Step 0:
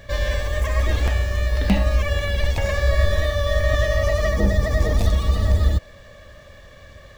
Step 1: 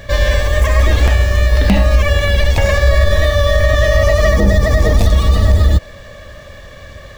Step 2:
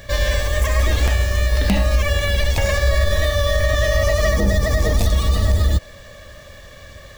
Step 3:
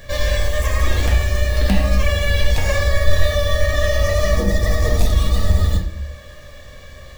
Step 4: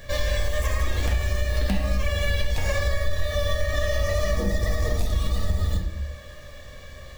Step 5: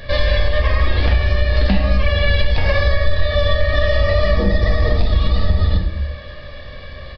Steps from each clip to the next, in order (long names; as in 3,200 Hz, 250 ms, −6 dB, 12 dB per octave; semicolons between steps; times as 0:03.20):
boost into a limiter +10.5 dB; level −1 dB
high-shelf EQ 4,500 Hz +8.5 dB; level −6 dB
convolution reverb RT60 0.55 s, pre-delay 4 ms, DRR 1.5 dB; level −3 dB
downward compressor 4 to 1, threshold −16 dBFS, peak gain reduction 9 dB; level −3 dB
downsampling to 11,025 Hz; level +8.5 dB